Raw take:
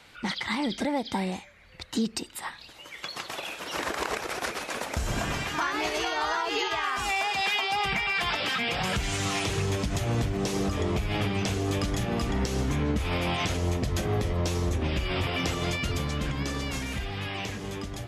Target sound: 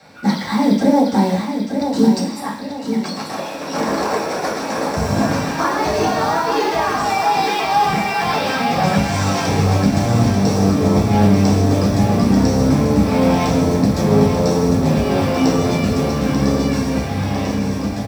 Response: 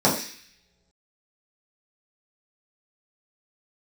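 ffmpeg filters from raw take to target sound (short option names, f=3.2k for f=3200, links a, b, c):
-filter_complex "[0:a]acrusher=bits=3:mode=log:mix=0:aa=0.000001,aecho=1:1:889|1778|2667|3556|4445:0.447|0.179|0.0715|0.0286|0.0114[a];[1:a]atrim=start_sample=2205[b];[a][b]afir=irnorm=-1:irlink=0,volume=-9.5dB"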